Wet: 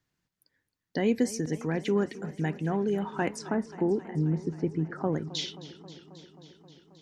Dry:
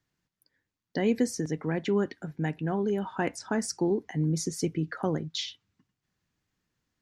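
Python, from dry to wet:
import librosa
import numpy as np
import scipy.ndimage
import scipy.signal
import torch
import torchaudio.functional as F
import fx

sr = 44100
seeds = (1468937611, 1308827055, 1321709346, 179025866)

y = fx.lowpass(x, sr, hz=1400.0, slope=12, at=(3.49, 5.13))
y = fx.echo_warbled(y, sr, ms=267, feedback_pct=76, rate_hz=2.8, cents=83, wet_db=-17.5)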